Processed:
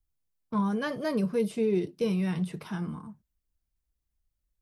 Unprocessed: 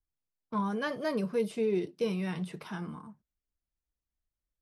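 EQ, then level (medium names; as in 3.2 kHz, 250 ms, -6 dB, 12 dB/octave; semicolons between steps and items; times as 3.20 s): bass shelf 200 Hz +10.5 dB; treble shelf 7.1 kHz +5.5 dB; 0.0 dB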